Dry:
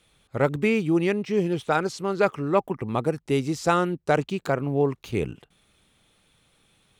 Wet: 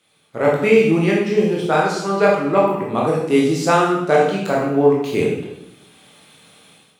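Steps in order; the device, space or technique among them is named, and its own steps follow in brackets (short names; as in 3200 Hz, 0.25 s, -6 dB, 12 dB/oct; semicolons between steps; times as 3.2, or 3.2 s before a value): far laptop microphone (reverb RT60 0.80 s, pre-delay 15 ms, DRR -4 dB; HPF 180 Hz 12 dB/oct; AGC gain up to 12 dB); gain -1 dB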